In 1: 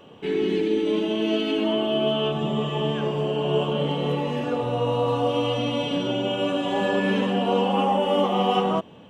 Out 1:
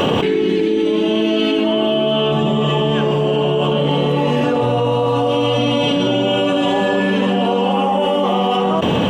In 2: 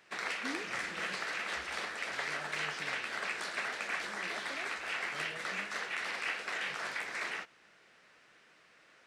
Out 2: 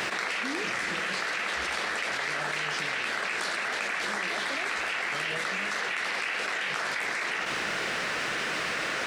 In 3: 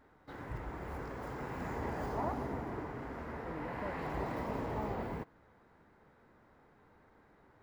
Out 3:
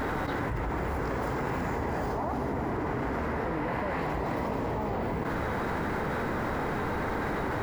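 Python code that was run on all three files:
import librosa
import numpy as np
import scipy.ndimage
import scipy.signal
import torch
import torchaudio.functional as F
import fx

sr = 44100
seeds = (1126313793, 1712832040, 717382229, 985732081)

y = fx.env_flatten(x, sr, amount_pct=100)
y = y * 10.0 ** (2.5 / 20.0)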